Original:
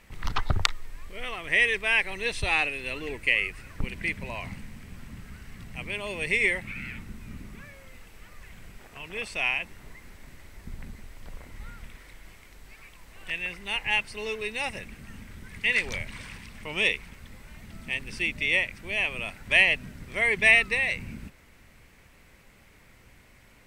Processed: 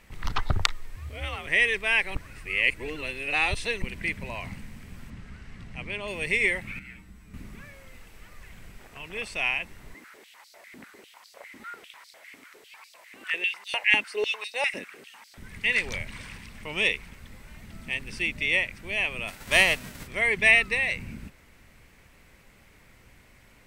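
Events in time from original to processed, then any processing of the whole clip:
0:00.96–0:01.47: frequency shifter +58 Hz
0:02.15–0:03.82: reverse
0:05.10–0:06.08: high-frequency loss of the air 65 metres
0:06.79–0:07.34: tuned comb filter 62 Hz, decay 0.2 s, harmonics odd, mix 90%
0:09.94–0:15.38: high-pass on a step sequencer 10 Hz 270–4,600 Hz
0:19.27–0:20.06: spectral envelope flattened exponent 0.6

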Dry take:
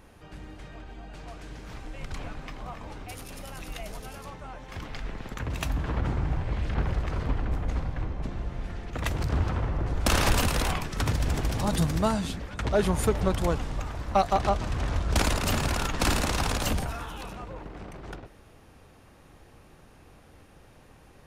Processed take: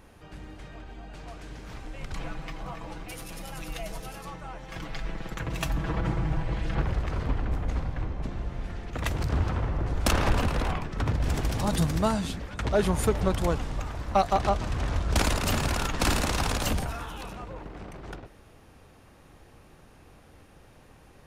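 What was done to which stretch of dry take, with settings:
0:02.15–0:06.82: comb filter 6.1 ms
0:10.11–0:11.24: low-pass filter 1,700 Hz 6 dB per octave

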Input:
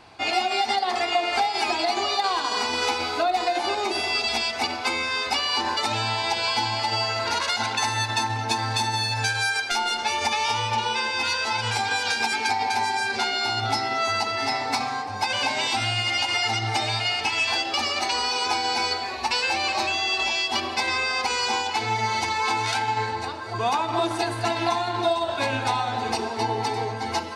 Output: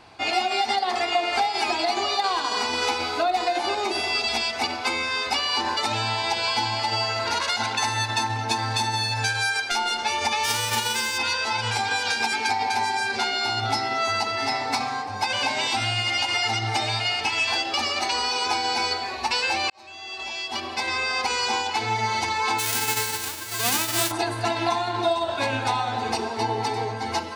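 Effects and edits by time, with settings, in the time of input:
0:10.43–0:11.17: spectral envelope flattened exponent 0.3
0:19.70–0:21.16: fade in
0:22.58–0:24.10: spectral envelope flattened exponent 0.1

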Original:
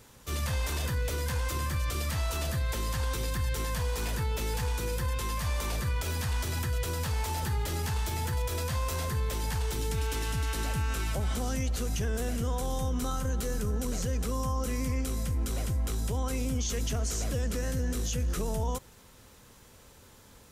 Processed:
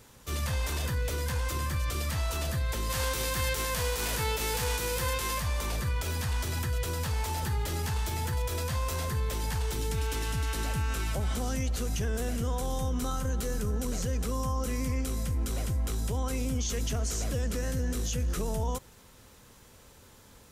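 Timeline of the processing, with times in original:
0:02.89–0:05.39: spectral envelope flattened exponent 0.6

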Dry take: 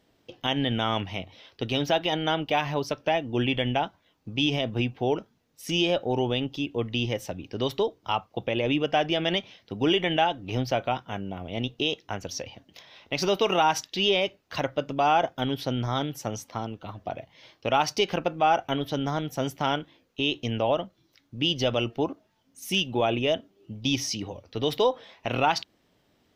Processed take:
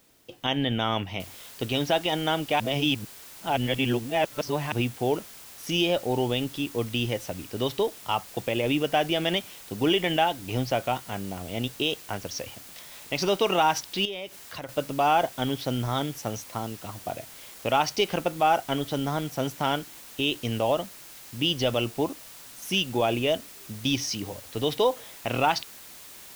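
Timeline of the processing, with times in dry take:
0:01.20: noise floor change −63 dB −46 dB
0:02.60–0:04.72: reverse
0:14.05–0:14.69: downward compressor 2.5 to 1, threshold −37 dBFS

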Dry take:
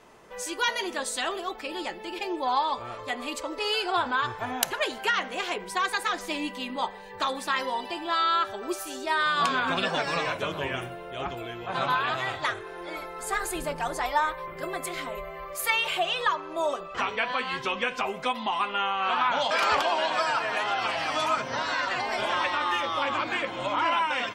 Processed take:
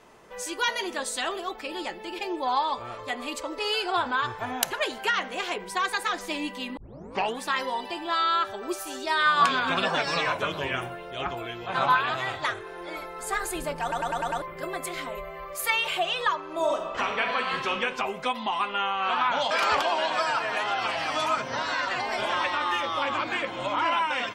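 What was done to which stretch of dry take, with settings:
0:06.77: tape start 0.63 s
0:08.86–0:12.01: auto-filter bell 2 Hz 850–5,400 Hz +7 dB
0:13.82: stutter in place 0.10 s, 6 plays
0:16.43–0:17.72: thrown reverb, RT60 1.2 s, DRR 3.5 dB

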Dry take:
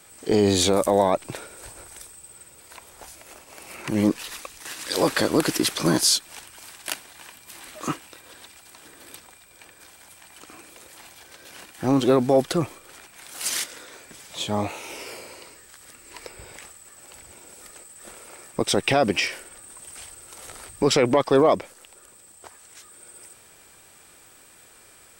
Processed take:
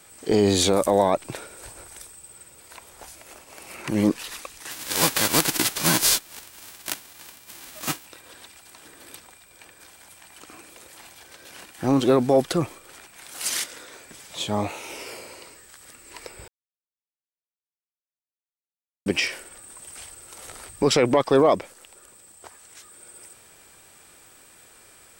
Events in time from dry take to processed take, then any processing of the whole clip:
0:04.70–0:08.05: spectral envelope flattened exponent 0.3
0:16.48–0:19.06: silence

